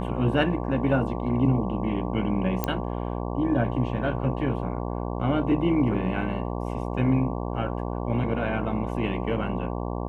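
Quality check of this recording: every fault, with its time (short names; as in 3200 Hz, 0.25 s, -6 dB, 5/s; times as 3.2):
buzz 60 Hz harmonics 19 -30 dBFS
2.64 pop -10 dBFS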